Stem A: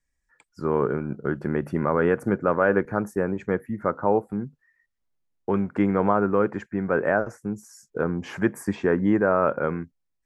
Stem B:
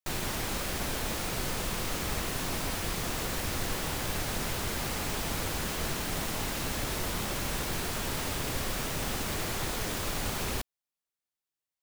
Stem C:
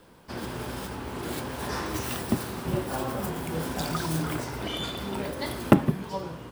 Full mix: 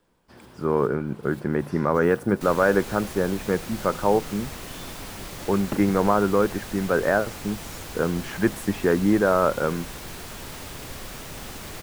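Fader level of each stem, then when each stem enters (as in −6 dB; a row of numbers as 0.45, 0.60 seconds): +1.0, −4.5, −13.5 decibels; 0.00, 2.35, 0.00 seconds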